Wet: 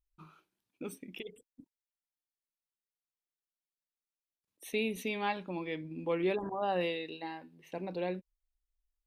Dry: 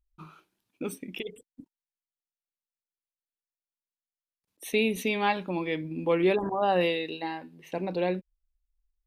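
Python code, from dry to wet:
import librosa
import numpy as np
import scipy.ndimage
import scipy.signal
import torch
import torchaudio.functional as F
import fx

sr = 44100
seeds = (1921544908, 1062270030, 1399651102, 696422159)

y = fx.lowpass(x, sr, hz=11000.0, slope=12, at=(5.19, 7.23))
y = y * 10.0 ** (-7.5 / 20.0)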